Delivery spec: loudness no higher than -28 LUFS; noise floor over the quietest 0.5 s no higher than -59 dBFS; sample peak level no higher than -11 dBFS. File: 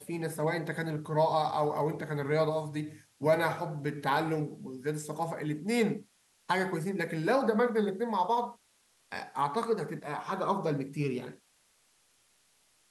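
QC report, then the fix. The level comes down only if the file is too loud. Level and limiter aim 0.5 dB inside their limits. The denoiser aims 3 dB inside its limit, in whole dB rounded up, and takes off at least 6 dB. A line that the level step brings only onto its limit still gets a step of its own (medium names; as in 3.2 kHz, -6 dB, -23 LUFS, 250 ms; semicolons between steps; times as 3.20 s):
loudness -31.5 LUFS: pass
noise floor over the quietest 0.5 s -69 dBFS: pass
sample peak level -14.0 dBFS: pass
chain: none needed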